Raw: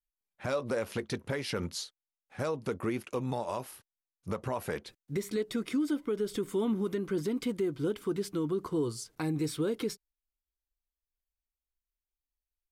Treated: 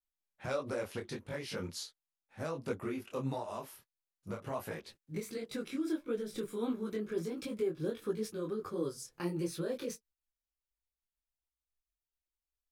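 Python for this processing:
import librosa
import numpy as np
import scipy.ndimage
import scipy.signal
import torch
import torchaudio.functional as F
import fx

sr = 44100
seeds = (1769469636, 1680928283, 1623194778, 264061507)

y = fx.pitch_glide(x, sr, semitones=2.5, runs='starting unshifted')
y = fx.detune_double(y, sr, cents=51)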